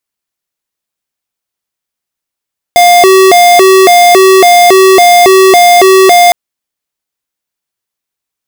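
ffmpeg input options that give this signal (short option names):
-f lavfi -i "aevalsrc='0.708*(2*lt(mod((542*t+162/1.8*(0.5-abs(mod(1.8*t,1)-0.5))),1),0.5)-1)':d=3.56:s=44100"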